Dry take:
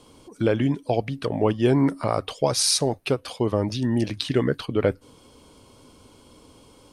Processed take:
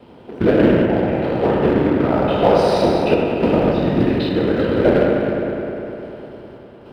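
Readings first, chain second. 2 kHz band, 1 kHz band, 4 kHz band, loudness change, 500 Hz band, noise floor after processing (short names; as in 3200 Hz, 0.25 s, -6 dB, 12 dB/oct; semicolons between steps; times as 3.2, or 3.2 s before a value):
+9.0 dB, +9.5 dB, -2.5 dB, +6.5 dB, +9.5 dB, -42 dBFS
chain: spectral trails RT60 1.80 s; in parallel at 0 dB: compressor 6:1, threshold -31 dBFS, peak gain reduction 17 dB; on the sum: random-step tremolo; whisperiser; notch comb 1100 Hz; companded quantiser 4-bit; air absorption 430 m; on a send: analogue delay 0.101 s, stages 2048, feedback 81%, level -7 dB; on the sum: gain +4.5 dB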